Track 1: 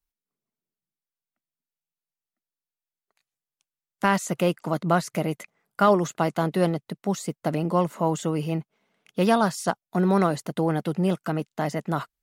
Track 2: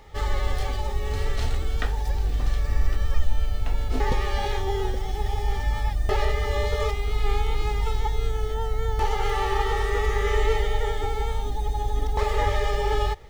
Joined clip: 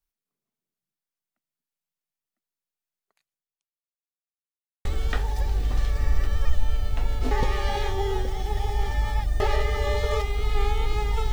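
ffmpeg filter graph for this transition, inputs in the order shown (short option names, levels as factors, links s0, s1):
-filter_complex "[0:a]apad=whole_dur=11.32,atrim=end=11.32,asplit=2[s0][s1];[s0]atrim=end=3.97,asetpts=PTS-STARTPTS,afade=t=out:st=3.11:d=0.86:c=qua[s2];[s1]atrim=start=3.97:end=4.85,asetpts=PTS-STARTPTS,volume=0[s3];[1:a]atrim=start=1.54:end=8.01,asetpts=PTS-STARTPTS,afade=t=in:d=0.004:c=hsin[s4];[s2][s3][s4]concat=n=3:v=0:a=1"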